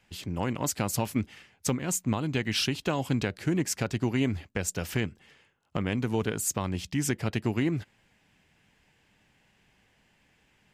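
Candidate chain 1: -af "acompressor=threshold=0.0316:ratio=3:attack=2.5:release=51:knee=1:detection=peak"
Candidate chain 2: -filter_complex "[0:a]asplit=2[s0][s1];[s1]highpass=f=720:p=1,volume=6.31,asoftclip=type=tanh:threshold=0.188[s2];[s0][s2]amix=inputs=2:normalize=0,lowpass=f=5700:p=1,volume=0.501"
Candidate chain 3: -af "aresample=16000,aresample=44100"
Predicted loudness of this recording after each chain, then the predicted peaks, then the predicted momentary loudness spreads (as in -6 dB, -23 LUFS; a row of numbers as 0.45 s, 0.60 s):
-34.5 LUFS, -27.5 LUFS, -30.5 LUFS; -17.0 dBFS, -15.0 dBFS, -15.0 dBFS; 6 LU, 8 LU, 6 LU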